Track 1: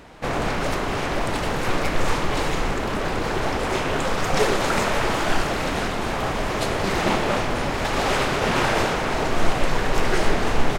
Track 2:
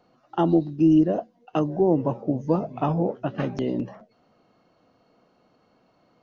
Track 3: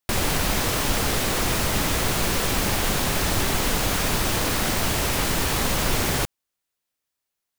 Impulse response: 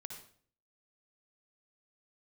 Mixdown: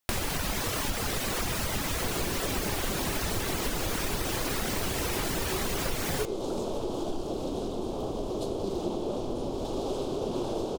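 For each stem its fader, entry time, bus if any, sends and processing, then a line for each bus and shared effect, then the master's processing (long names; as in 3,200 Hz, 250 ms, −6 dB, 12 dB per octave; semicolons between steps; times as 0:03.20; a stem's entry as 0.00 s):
−8.0 dB, 1.80 s, no send, drawn EQ curve 170 Hz 0 dB, 360 Hz +9 dB, 1,100 Hz −7 dB, 1,900 Hz −29 dB, 3,300 Hz −3 dB
muted
+2.0 dB, 0.00 s, no send, reverb reduction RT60 0.78 s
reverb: not used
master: hum removal 150.2 Hz, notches 32; downward compressor 4 to 1, threshold −28 dBFS, peak gain reduction 11 dB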